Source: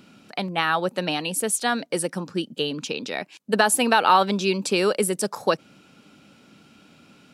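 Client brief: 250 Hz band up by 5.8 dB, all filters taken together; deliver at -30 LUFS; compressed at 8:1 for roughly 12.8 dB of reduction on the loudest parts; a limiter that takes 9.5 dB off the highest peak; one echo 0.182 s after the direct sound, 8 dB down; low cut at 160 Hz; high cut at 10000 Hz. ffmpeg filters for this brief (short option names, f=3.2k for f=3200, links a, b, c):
-af "highpass=160,lowpass=10k,equalizer=f=250:t=o:g=9,acompressor=threshold=-25dB:ratio=8,alimiter=limit=-20.5dB:level=0:latency=1,aecho=1:1:182:0.398,volume=1dB"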